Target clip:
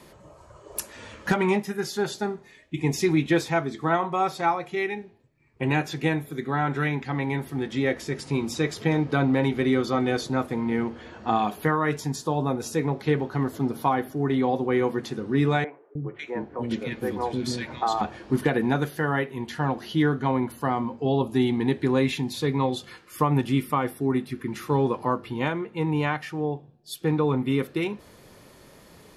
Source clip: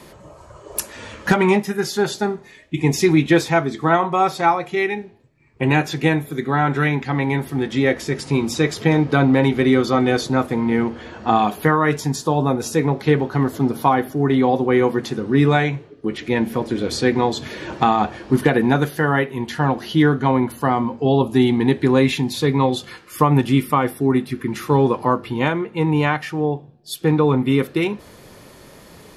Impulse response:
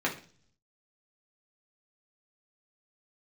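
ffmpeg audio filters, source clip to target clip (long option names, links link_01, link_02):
-filter_complex "[0:a]asettb=1/sr,asplit=3[link_01][link_02][link_03];[link_01]atrim=end=15.644[link_04];[link_02]atrim=start=15.64:end=18.01,asetpts=PTS-STARTPTS,afade=type=in:duration=0.004:curve=qsin,afade=type=out:start_time=2.366:duration=0.004:curve=qsin,acrossover=split=360|1600[link_05][link_06][link_07];[link_05]adelay=310[link_08];[link_07]adelay=550[link_09];[link_08][link_06][link_09]amix=inputs=3:normalize=0,atrim=end_sample=104517[link_10];[link_03]atrim=start=18.006[link_11];[link_04][link_10]acrossfade=duration=0.004:curve1=hsin:curve2=qsin[link_12];[link_12][link_11]acrossfade=duration=0.004:curve1=qsin:curve2=hsin,volume=-7dB"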